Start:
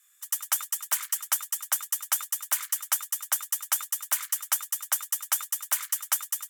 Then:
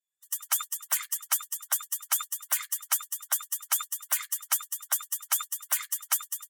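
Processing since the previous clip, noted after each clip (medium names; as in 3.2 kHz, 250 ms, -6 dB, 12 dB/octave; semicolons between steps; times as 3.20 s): expander on every frequency bin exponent 2; transient shaper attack -5 dB, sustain +3 dB; trim +6 dB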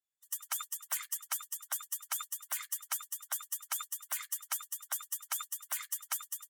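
peak limiter -16 dBFS, peak gain reduction 5 dB; trim -6 dB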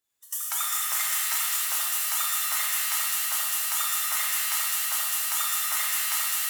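in parallel at +2 dB: compressor with a negative ratio -40 dBFS, ratio -1; on the sum: pitch-shifted reverb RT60 3 s, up +7 st, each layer -2 dB, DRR -5.5 dB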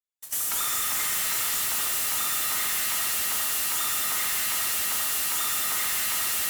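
waveshaping leveller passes 5; saturation -16 dBFS, distortion -23 dB; trim -7.5 dB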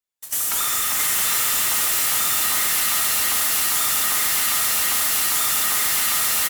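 delay 669 ms -4 dB; trim +5 dB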